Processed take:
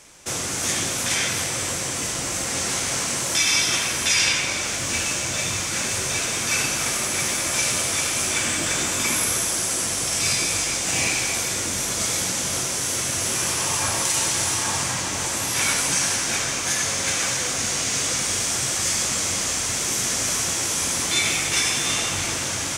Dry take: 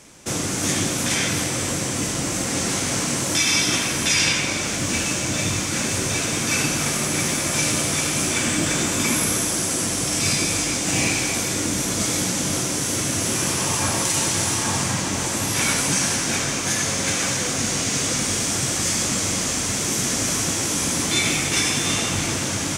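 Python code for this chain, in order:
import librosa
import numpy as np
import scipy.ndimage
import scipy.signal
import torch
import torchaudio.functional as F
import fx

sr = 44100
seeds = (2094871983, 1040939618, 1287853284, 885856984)

y = fx.peak_eq(x, sr, hz=210.0, db=-8.0, octaves=2.2)
y = fx.hum_notches(y, sr, base_hz=50, count=6)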